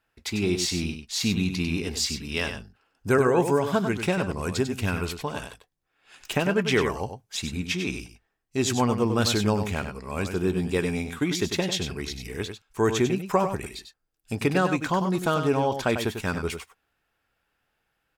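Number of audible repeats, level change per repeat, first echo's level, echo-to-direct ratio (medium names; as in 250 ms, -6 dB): 1, no regular repeats, -8.0 dB, -8.0 dB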